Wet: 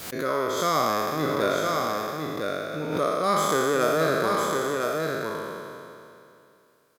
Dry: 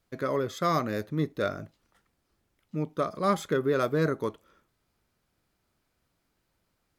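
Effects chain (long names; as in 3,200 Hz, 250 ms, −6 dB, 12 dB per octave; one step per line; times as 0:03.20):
peak hold with a decay on every bin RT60 2.66 s
high-pass filter 290 Hz 6 dB per octave
high-shelf EQ 5,600 Hz +7.5 dB
single-tap delay 1,006 ms −4 dB
background raised ahead of every attack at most 55 dB per second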